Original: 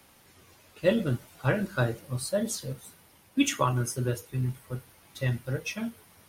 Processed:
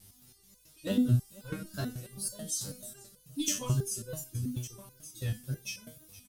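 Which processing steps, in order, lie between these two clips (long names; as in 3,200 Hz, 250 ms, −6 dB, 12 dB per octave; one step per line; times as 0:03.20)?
bass and treble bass +3 dB, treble +8 dB
in parallel at −6 dB: wave folding −18 dBFS
on the sum: tape wow and flutter 130 cents
on a send: single-tap delay 1,163 ms −15.5 dB
on the sum: mains hum 50 Hz, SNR 30 dB
octave-band graphic EQ 500/1,000/2,000 Hz −6/−8/−9 dB
single-tap delay 470 ms −19.5 dB
step-sequenced resonator 9.2 Hz 98–500 Hz
level +3.5 dB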